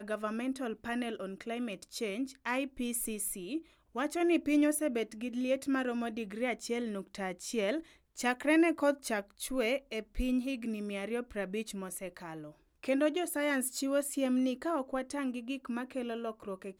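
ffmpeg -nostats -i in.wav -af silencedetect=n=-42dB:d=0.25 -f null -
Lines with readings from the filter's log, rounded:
silence_start: 3.59
silence_end: 3.95 | silence_duration: 0.36
silence_start: 7.80
silence_end: 8.18 | silence_duration: 0.37
silence_start: 12.49
silence_end: 12.83 | silence_duration: 0.35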